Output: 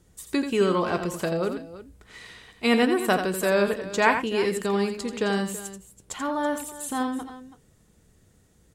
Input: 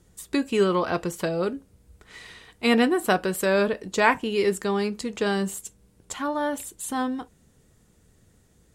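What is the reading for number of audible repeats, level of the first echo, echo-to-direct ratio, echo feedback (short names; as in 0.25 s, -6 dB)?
2, -8.0 dB, -7.5 dB, no steady repeat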